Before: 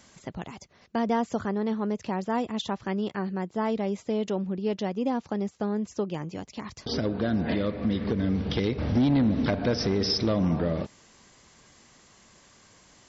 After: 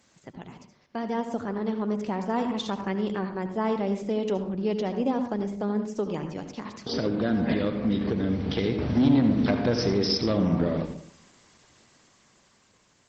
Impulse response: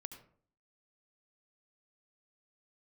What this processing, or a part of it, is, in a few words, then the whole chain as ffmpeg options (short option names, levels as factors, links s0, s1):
far-field microphone of a smart speaker: -filter_complex "[0:a]asplit=3[s0][s1][s2];[s0]afade=t=out:st=5.77:d=0.02[s3];[s1]highpass=96,afade=t=in:st=5.77:d=0.02,afade=t=out:st=7.29:d=0.02[s4];[s2]afade=t=in:st=7.29:d=0.02[s5];[s3][s4][s5]amix=inputs=3:normalize=0[s6];[1:a]atrim=start_sample=2205[s7];[s6][s7]afir=irnorm=-1:irlink=0,highpass=f=110:p=1,dynaudnorm=f=360:g=9:m=2.11" -ar 48000 -c:a libopus -b:a 16k